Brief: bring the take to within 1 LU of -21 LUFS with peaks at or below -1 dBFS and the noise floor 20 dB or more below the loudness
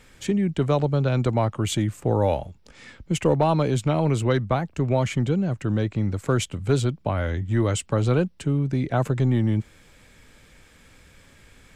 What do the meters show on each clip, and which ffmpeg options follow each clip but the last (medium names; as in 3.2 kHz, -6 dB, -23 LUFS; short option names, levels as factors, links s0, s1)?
loudness -23.5 LUFS; peak level -9.5 dBFS; loudness target -21.0 LUFS
-> -af "volume=1.33"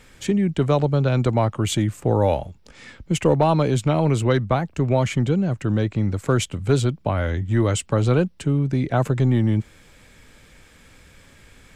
loudness -21.5 LUFS; peak level -7.0 dBFS; noise floor -52 dBFS